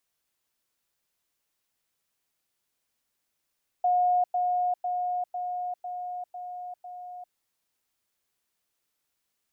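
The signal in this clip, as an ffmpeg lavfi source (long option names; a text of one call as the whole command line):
ffmpeg -f lavfi -i "aevalsrc='pow(10,(-20-3*floor(t/0.5))/20)*sin(2*PI*720*t)*clip(min(mod(t,0.5),0.4-mod(t,0.5))/0.005,0,1)':duration=3.5:sample_rate=44100" out.wav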